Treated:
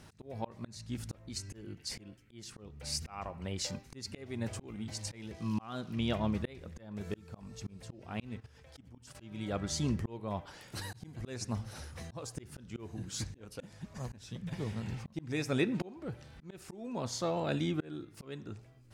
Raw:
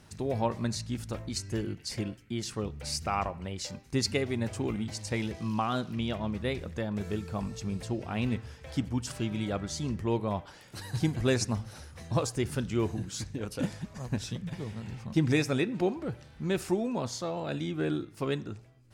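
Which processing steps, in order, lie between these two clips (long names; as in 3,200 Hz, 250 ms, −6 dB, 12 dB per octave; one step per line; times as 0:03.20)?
0:08.40–0:09.15: output level in coarse steps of 14 dB
volume swells 548 ms
level +1 dB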